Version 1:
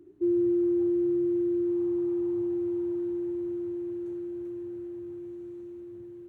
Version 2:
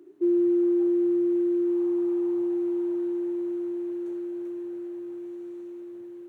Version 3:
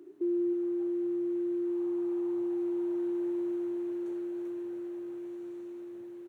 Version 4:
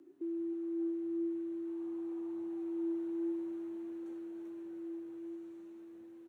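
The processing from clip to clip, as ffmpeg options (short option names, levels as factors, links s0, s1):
-af "highpass=360,volume=2"
-filter_complex "[0:a]alimiter=level_in=1.19:limit=0.0631:level=0:latency=1,volume=0.841,asplit=2[s0][s1];[s1]aecho=0:1:320:0.266[s2];[s0][s2]amix=inputs=2:normalize=0"
-af "flanger=delay=3.7:depth=2.5:regen=66:speed=0.49:shape=triangular,afreqshift=-14,volume=0.75"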